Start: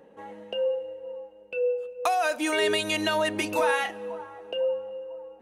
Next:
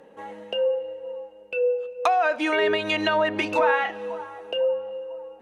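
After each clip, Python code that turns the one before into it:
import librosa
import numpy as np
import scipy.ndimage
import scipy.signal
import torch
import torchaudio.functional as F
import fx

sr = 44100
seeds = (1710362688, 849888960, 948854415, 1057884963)

y = fx.env_lowpass_down(x, sr, base_hz=2000.0, full_db=-21.5)
y = fx.low_shelf(y, sr, hz=460.0, db=-5.0)
y = y * 10.0 ** (5.5 / 20.0)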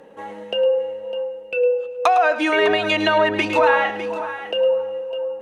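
y = fx.echo_multitap(x, sr, ms=(107, 604), db=(-12.5, -12.5))
y = y * 10.0 ** (4.5 / 20.0)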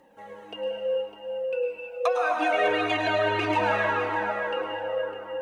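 y = fx.quant_dither(x, sr, seeds[0], bits=12, dither='triangular')
y = fx.rev_plate(y, sr, seeds[1], rt60_s=4.8, hf_ratio=0.45, predelay_ms=90, drr_db=-1.5)
y = fx.comb_cascade(y, sr, direction='falling', hz=1.7)
y = y * 10.0 ** (-5.5 / 20.0)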